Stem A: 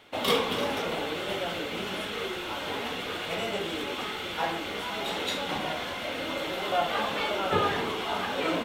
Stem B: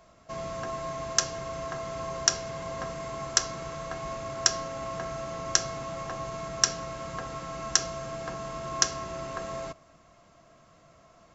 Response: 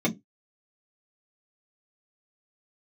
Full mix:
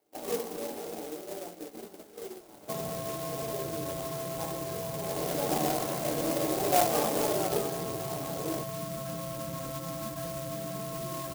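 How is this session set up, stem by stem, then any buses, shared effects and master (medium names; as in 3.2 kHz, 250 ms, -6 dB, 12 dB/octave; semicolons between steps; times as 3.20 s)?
4.92 s -18.5 dB -> 5.42 s -8 dB -> 7.26 s -8 dB -> 7.66 s -18.5 dB, 0.00 s, send -18 dB, high-order bell 520 Hz +9.5 dB
0.0 dB, 2.40 s, no send, harmonic-percussive separation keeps harmonic; peaking EQ 260 Hz +14.5 dB 2.9 oct; compression, threshold -34 dBFS, peak gain reduction 9.5 dB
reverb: on, RT60 0.20 s, pre-delay 3 ms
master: gate -41 dBFS, range -9 dB; sampling jitter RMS 0.11 ms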